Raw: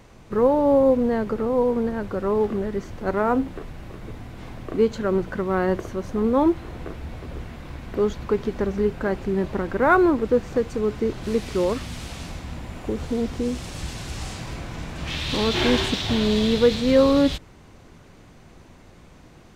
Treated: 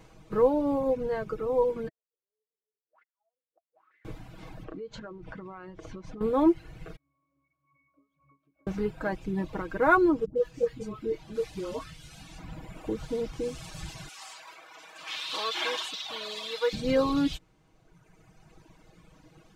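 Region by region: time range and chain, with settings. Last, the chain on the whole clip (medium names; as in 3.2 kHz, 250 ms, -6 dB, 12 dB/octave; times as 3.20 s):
1.88–4.05 s: high-pass 270 Hz + inverted gate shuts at -28 dBFS, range -42 dB + auto-wah 410–2000 Hz, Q 14, up, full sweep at -39.5 dBFS
4.64–6.21 s: low-pass 5.8 kHz + compression 16:1, threshold -30 dBFS
6.96–8.67 s: frequency weighting A + compression, threshold -34 dBFS + pitch-class resonator C#, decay 0.6 s
10.25–12.39 s: upward compressor, threshold -41 dBFS + phase dispersion highs, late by 111 ms, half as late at 720 Hz + detune thickener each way 13 cents
14.08–16.73 s: high-pass 770 Hz + dynamic bell 1.1 kHz, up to +5 dB, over -47 dBFS, Q 3.3
whole clip: band-stop 1.9 kHz, Q 27; reverb removal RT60 1.8 s; comb 6.3 ms; trim -5.5 dB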